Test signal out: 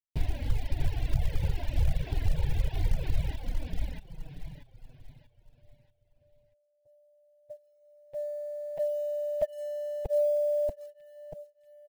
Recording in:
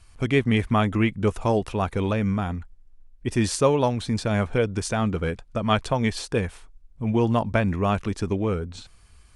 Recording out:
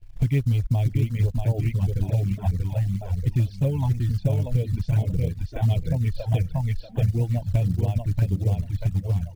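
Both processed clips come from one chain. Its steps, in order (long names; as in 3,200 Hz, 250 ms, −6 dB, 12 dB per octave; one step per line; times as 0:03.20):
low shelf with overshoot 270 Hz +11 dB, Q 3
noise gate −41 dBFS, range −11 dB
in parallel at −12 dB: dead-zone distortion −32 dBFS
on the sum: high-frequency loss of the air 350 metres
phaser with its sweep stopped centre 510 Hz, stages 4
on a send: repeating echo 635 ms, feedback 38%, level −3 dB
on the sum: flanger swept by the level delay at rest 9.1 ms, full sweep at −11 dBFS
downward compressor 4 to 1, threshold −19 dBFS
floating-point word with a short mantissa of 4 bits
reverb reduction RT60 1.1 s
level +1.5 dB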